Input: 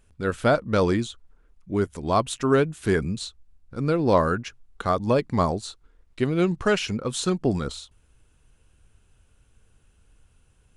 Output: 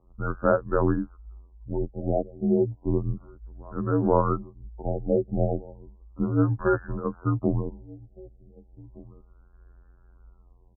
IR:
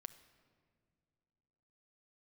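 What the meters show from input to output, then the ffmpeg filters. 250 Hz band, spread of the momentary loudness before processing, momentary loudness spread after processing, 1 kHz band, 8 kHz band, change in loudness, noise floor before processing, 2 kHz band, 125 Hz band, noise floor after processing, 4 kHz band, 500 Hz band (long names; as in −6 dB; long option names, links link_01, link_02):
−1.5 dB, 12 LU, 15 LU, −4.5 dB, below −40 dB, −2.5 dB, −61 dBFS, −8.5 dB, 0.0 dB, −57 dBFS, below −40 dB, −3.0 dB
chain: -filter_complex "[0:a]asplit=2[link_01][link_02];[link_02]acompressor=threshold=-34dB:ratio=6,volume=3dB[link_03];[link_01][link_03]amix=inputs=2:normalize=0,afftfilt=real='hypot(re,im)*cos(PI*b)':imag='0':win_size=2048:overlap=0.75,afreqshift=-56,asplit=2[link_04][link_05];[link_05]adelay=1516,volume=-22dB,highshelf=frequency=4000:gain=-34.1[link_06];[link_04][link_06]amix=inputs=2:normalize=0,afftfilt=real='re*lt(b*sr/1024,780*pow(1800/780,0.5+0.5*sin(2*PI*0.33*pts/sr)))':imag='im*lt(b*sr/1024,780*pow(1800/780,0.5+0.5*sin(2*PI*0.33*pts/sr)))':win_size=1024:overlap=0.75"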